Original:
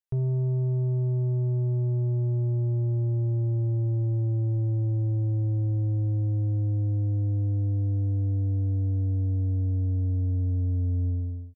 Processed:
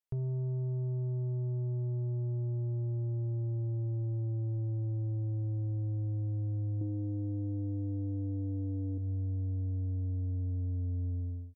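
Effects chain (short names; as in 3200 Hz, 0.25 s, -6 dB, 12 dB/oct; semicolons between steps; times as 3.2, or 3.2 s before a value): 6.81–8.98 bell 360 Hz +13.5 dB 1.2 oct; compressor, threshold -28 dBFS, peak gain reduction 7.5 dB; gain -4.5 dB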